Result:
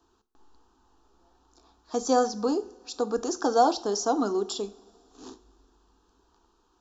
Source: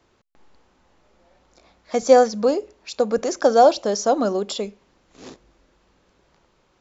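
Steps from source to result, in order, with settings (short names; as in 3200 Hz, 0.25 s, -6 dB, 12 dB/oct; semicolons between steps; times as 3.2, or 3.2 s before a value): fixed phaser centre 570 Hz, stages 6; two-slope reverb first 0.38 s, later 3 s, from -22 dB, DRR 11 dB; gain -2 dB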